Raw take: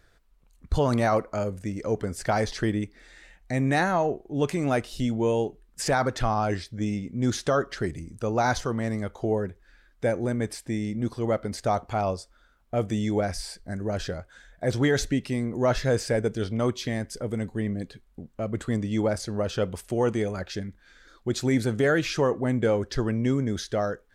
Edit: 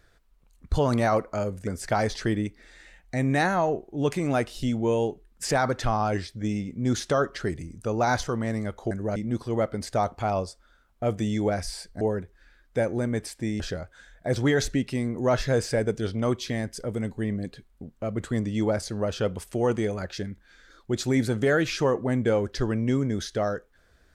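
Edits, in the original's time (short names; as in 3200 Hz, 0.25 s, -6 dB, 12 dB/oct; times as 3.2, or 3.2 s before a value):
1.67–2.04 cut
9.28–10.87 swap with 13.72–13.97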